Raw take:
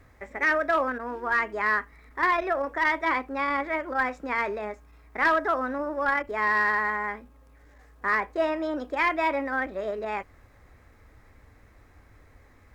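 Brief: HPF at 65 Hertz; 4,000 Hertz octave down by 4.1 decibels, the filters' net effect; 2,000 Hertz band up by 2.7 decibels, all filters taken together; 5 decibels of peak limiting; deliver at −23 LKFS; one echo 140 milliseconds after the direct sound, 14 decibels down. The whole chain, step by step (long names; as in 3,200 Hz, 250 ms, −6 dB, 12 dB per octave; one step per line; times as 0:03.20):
high-pass filter 65 Hz
parametric band 2,000 Hz +4.5 dB
parametric band 4,000 Hz −7.5 dB
brickwall limiter −17.5 dBFS
single-tap delay 140 ms −14 dB
level +4 dB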